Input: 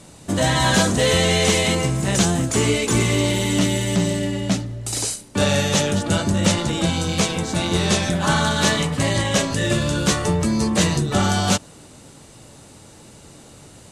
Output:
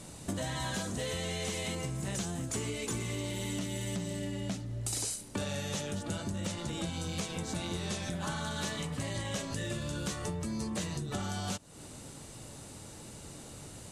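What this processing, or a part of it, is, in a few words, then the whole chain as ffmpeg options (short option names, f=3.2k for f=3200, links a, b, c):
ASMR close-microphone chain: -af "lowshelf=f=130:g=3.5,acompressor=threshold=-29dB:ratio=8,highshelf=f=8.8k:g=6,volume=-4.5dB"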